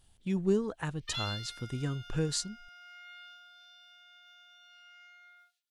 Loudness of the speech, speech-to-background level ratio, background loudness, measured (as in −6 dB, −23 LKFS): −34.0 LKFS, 12.0 dB, −46.0 LKFS